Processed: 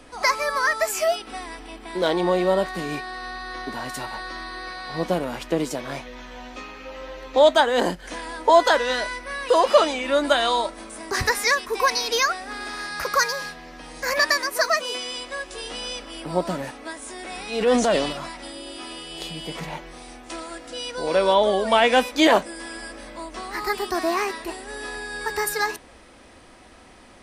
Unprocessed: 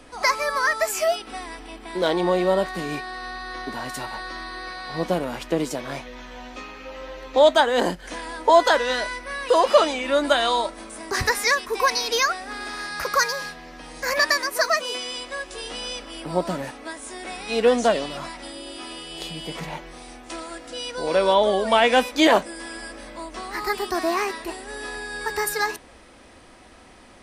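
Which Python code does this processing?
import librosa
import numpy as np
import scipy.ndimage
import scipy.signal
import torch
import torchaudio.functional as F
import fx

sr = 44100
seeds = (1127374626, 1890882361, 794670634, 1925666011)

y = fx.transient(x, sr, attack_db=-6, sustain_db=6, at=(17.02, 18.13))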